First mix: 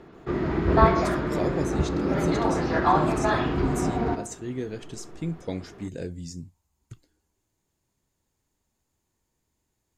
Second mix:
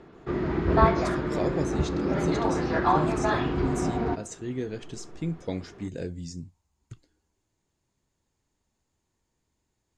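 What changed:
background: send -10.0 dB; master: add LPF 7800 Hz 12 dB/oct

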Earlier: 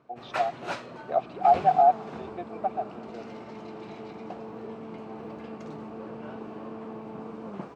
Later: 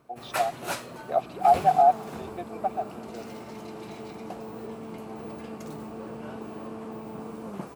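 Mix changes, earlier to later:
background: add low shelf 72 Hz +10.5 dB; master: remove air absorption 150 m

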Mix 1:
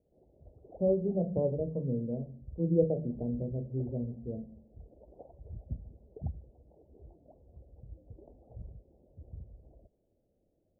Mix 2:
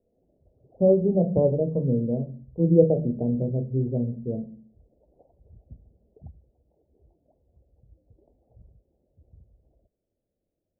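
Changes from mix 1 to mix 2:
speech +9.0 dB; background -7.5 dB

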